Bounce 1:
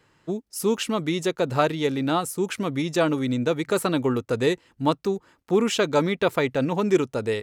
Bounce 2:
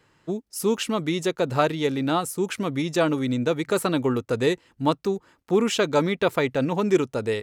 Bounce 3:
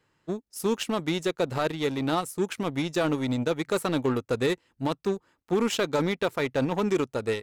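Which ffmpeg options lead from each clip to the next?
-af anull
-af "alimiter=limit=0.178:level=0:latency=1:release=14,aeval=exprs='0.178*(cos(1*acos(clip(val(0)/0.178,-1,1)))-cos(1*PI/2))+0.0158*(cos(3*acos(clip(val(0)/0.178,-1,1)))-cos(3*PI/2))+0.00794*(cos(7*acos(clip(val(0)/0.178,-1,1)))-cos(7*PI/2))':c=same,volume=0.891"

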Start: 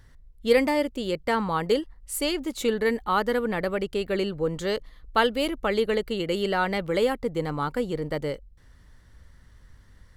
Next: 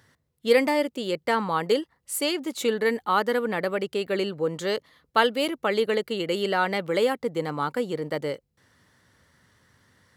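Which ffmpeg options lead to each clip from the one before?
-af "highpass=f=92:w=0.5412,highpass=f=92:w=1.3066,lowshelf=f=150:g=-10,volume=1.19"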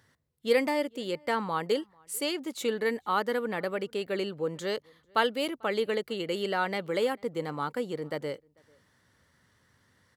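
-filter_complex "[0:a]asplit=2[s0][s1];[s1]adelay=443.1,volume=0.0355,highshelf=f=4000:g=-9.97[s2];[s0][s2]amix=inputs=2:normalize=0,volume=0.562"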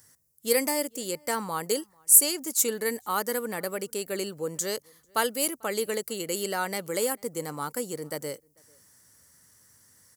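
-af "aexciter=amount=11.4:drive=3.3:freq=5300,volume=0.891"

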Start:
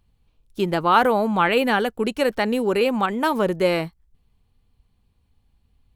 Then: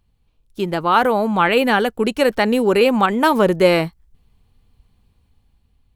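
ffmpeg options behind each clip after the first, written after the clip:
-af "dynaudnorm=f=270:g=9:m=3.76"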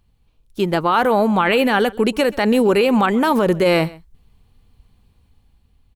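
-af "alimiter=limit=0.316:level=0:latency=1:release=35,aecho=1:1:131:0.0794,volume=1.41"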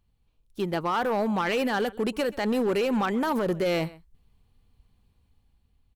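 -af "asoftclip=type=hard:threshold=0.266,volume=0.355"

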